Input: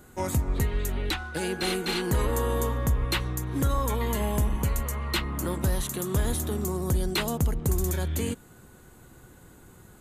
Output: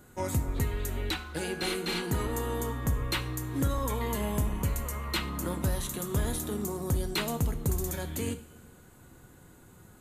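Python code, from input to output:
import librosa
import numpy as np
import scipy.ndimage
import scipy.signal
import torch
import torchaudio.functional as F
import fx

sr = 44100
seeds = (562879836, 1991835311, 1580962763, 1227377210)

y = fx.notch_comb(x, sr, f0_hz=540.0, at=(2.06, 2.86))
y = fx.rev_double_slope(y, sr, seeds[0], early_s=0.43, late_s=2.3, knee_db=-18, drr_db=8.0)
y = F.gain(torch.from_numpy(y), -3.5).numpy()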